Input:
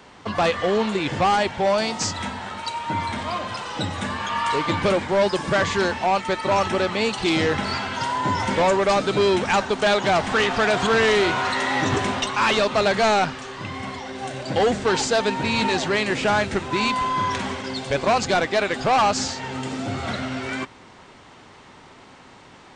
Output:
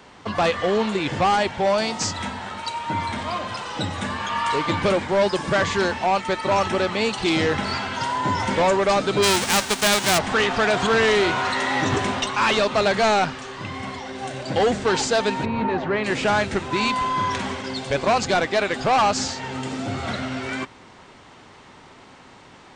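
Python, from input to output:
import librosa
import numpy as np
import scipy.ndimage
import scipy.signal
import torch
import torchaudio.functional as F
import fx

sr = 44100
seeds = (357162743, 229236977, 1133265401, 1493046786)

y = fx.envelope_flatten(x, sr, power=0.3, at=(9.22, 10.17), fade=0.02)
y = fx.lowpass(y, sr, hz=fx.line((15.44, 1100.0), (16.03, 2000.0)), slope=12, at=(15.44, 16.03), fade=0.02)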